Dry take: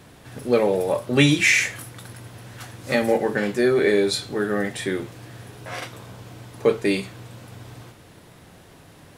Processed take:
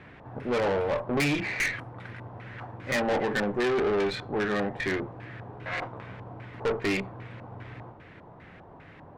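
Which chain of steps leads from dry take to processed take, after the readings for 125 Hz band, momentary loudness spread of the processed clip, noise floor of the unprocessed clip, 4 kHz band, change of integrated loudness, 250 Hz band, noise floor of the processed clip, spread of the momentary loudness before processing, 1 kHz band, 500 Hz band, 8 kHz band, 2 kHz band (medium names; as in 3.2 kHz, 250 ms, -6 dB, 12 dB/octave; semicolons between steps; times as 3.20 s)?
-7.0 dB, 17 LU, -49 dBFS, -9.5 dB, -7.5 dB, -7.0 dB, -50 dBFS, 22 LU, -1.0 dB, -6.5 dB, -13.0 dB, -6.0 dB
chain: LFO low-pass square 2.5 Hz 910–2100 Hz; valve stage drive 23 dB, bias 0.5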